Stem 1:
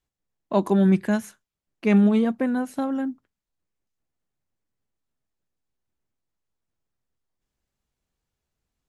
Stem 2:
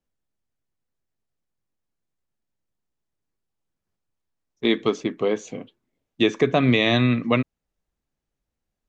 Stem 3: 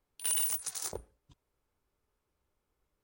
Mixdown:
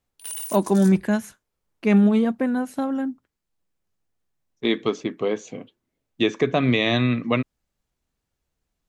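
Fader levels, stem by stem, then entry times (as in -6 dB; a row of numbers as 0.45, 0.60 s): +1.0, -1.5, -2.5 dB; 0.00, 0.00, 0.00 s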